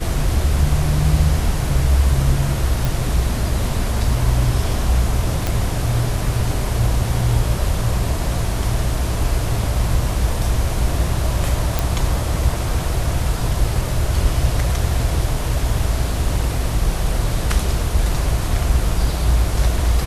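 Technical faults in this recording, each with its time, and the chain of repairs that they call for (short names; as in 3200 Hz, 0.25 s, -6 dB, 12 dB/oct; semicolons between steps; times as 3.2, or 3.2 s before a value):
2.85 pop
5.47 pop
11.79 pop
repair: de-click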